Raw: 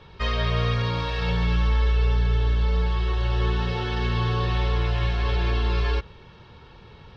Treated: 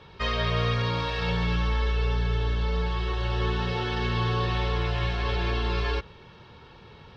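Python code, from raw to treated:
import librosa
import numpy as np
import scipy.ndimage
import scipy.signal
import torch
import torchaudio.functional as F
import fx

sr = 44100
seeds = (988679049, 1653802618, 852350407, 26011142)

y = fx.low_shelf(x, sr, hz=70.0, db=-9.0)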